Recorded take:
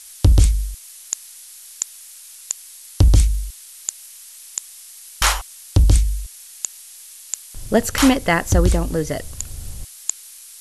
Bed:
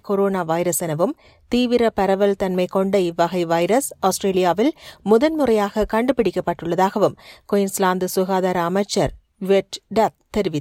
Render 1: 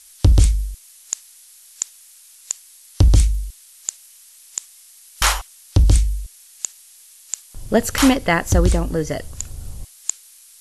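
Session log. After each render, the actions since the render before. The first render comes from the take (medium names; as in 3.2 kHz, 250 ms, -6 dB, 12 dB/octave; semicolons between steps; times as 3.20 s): noise print and reduce 6 dB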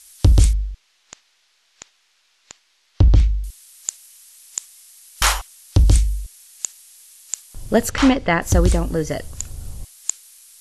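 0.53–3.44 s: distance through air 220 m; 7.90–8.42 s: distance through air 120 m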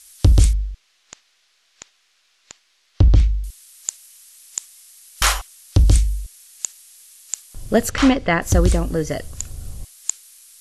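band-stop 900 Hz, Q 9.5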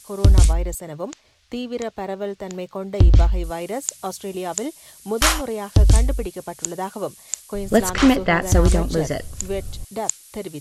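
add bed -10.5 dB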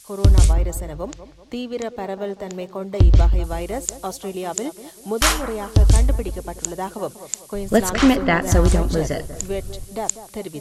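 bucket-brigade echo 192 ms, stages 2048, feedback 41%, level -13 dB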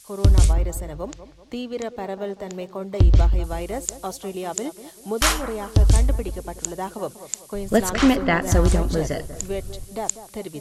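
trim -2 dB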